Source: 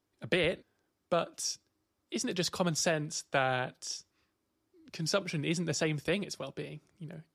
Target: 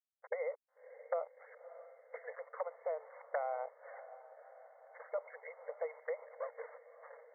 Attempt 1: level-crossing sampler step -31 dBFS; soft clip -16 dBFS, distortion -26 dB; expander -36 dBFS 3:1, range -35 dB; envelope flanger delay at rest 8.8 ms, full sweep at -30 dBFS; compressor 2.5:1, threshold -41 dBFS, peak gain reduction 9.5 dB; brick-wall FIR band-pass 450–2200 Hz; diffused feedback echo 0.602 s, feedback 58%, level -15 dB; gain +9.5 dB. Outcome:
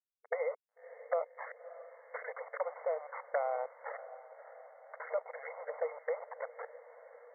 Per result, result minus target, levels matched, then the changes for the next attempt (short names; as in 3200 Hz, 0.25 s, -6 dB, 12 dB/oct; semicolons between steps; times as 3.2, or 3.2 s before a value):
level-crossing sampler: distortion +10 dB; compressor: peak gain reduction -4 dB
change: level-crossing sampler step -39.5 dBFS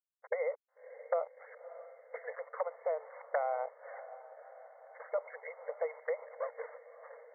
compressor: peak gain reduction -4 dB
change: compressor 2.5:1, threshold -48 dBFS, peak gain reduction 14 dB